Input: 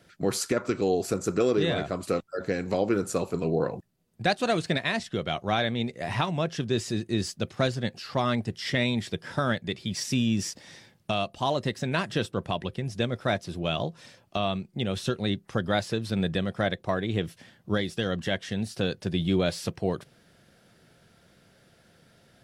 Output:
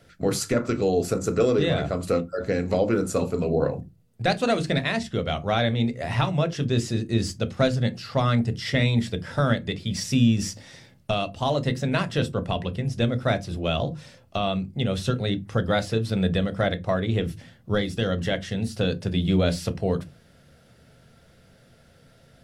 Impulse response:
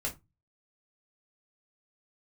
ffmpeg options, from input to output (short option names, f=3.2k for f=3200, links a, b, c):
-filter_complex "[0:a]asplit=2[a][b];[1:a]atrim=start_sample=2205,lowshelf=f=440:g=10.5[c];[b][c]afir=irnorm=-1:irlink=0,volume=-11dB[d];[a][d]amix=inputs=2:normalize=0"